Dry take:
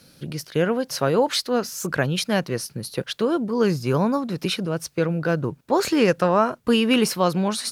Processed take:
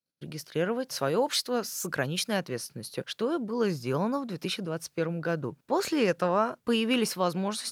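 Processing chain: 0.96–2.37 high shelf 5300 Hz +5.5 dB; gate -47 dBFS, range -36 dB; low shelf 100 Hz -8.5 dB; gain -6.5 dB

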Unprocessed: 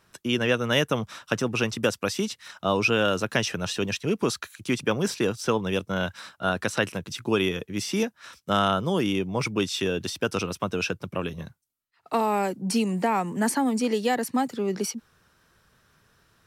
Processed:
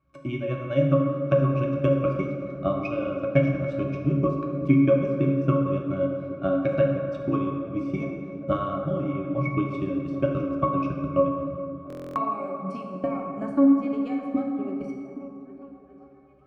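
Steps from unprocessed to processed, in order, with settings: transient shaper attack +12 dB, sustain -9 dB; octave resonator C#, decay 0.2 s; on a send: delay with a stepping band-pass 0.409 s, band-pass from 180 Hz, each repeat 0.7 oct, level -10 dB; on the sum: plate-style reverb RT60 2.4 s, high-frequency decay 0.5×, DRR 0.5 dB; stuck buffer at 11.88, samples 1024, times 11; gain +6 dB

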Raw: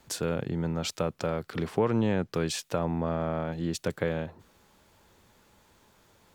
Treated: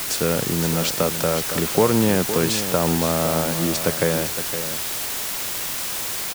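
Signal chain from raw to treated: low shelf 78 Hz -9 dB; requantised 6-bit, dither triangular; on a send: echo 0.512 s -10 dB; on the sum: gain +8.5 dB

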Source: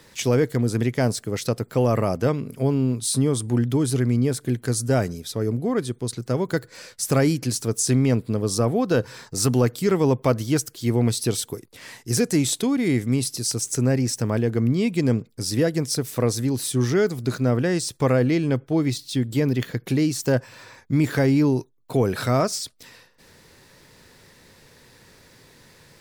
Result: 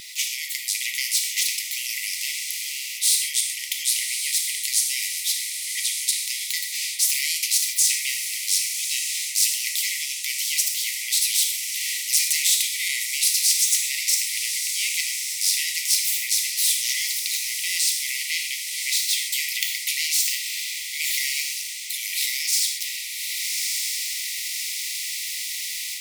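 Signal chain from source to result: diffused feedback echo 1.185 s, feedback 42%, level -13 dB; AGC gain up to 14 dB; brick-wall FIR high-pass 1900 Hz; non-linear reverb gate 0.16 s falling, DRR 3 dB; spectral compressor 2:1

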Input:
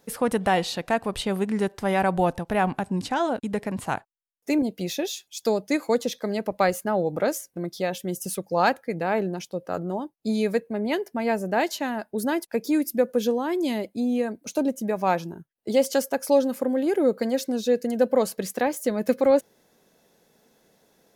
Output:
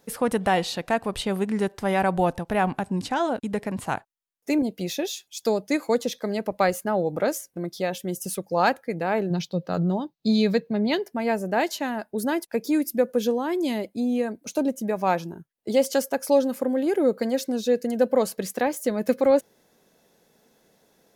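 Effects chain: 9.3–11.06 fifteen-band EQ 160 Hz +12 dB, 4000 Hz +11 dB, 10000 Hz -11 dB

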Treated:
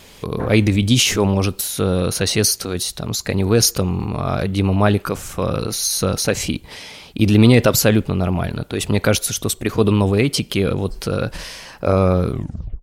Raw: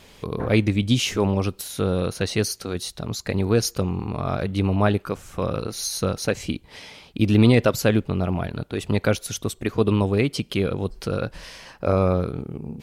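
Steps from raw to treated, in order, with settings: tape stop at the end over 0.52 s; transient shaper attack 0 dB, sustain +6 dB; high shelf 6000 Hz +6.5 dB; gain +4 dB

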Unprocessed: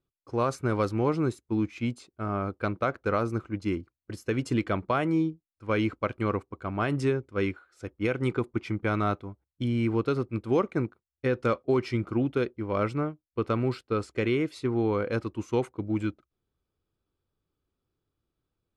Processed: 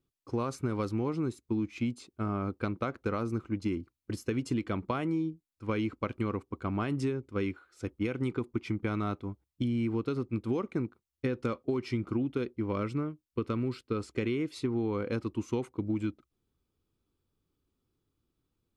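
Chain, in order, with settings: fifteen-band EQ 250 Hz +4 dB, 630 Hz -5 dB, 1600 Hz -4 dB; compressor, threshold -30 dBFS, peak gain reduction 10 dB; 12.72–13.96 bell 770 Hz -7 dB 0.38 oct; gain +2 dB

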